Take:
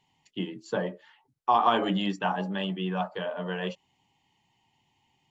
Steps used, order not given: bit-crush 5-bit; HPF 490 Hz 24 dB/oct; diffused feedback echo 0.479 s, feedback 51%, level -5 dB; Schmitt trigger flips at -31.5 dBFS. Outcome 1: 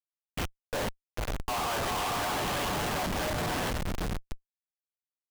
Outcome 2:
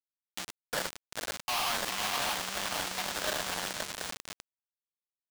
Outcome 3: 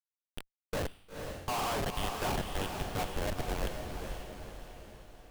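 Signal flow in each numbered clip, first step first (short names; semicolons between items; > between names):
diffused feedback echo > bit-crush > HPF > Schmitt trigger; diffused feedback echo > Schmitt trigger > HPF > bit-crush; HPF > bit-crush > Schmitt trigger > diffused feedback echo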